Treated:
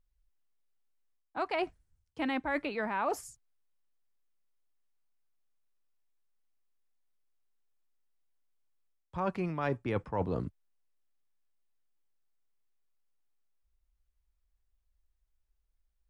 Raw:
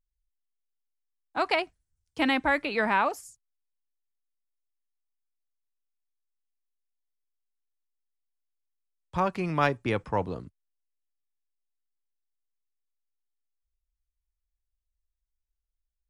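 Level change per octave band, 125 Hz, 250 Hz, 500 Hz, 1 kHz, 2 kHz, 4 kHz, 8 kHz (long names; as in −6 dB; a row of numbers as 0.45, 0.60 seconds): −3.0, −4.5, −4.5, −7.5, −9.5, −11.0, −2.0 decibels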